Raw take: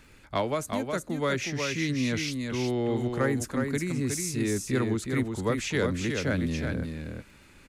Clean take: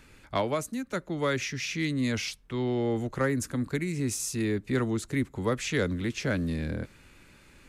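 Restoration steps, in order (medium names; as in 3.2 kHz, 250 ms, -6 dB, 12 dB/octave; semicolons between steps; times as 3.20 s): de-click; inverse comb 365 ms -5 dB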